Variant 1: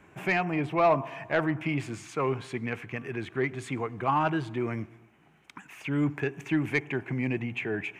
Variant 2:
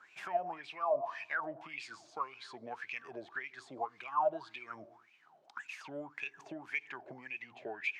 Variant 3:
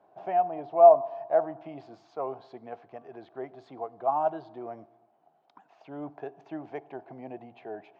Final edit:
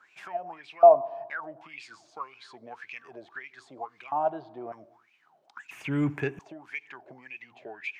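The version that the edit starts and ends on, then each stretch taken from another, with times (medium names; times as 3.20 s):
2
0.83–1.30 s: from 3
4.12–4.72 s: from 3
5.71–6.39 s: from 1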